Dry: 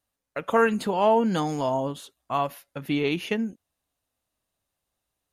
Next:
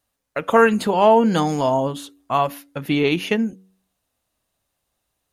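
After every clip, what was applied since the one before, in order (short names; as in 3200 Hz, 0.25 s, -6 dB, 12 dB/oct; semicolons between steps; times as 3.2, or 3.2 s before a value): de-hum 94.67 Hz, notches 5; gain +6.5 dB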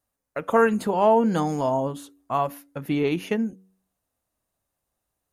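bell 3400 Hz -7.5 dB 1.5 oct; gain -4 dB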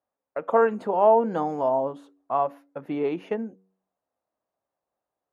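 band-pass 660 Hz, Q 1; gain +1.5 dB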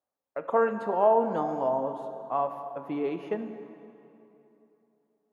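plate-style reverb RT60 3 s, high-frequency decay 0.7×, DRR 7.5 dB; gain -4 dB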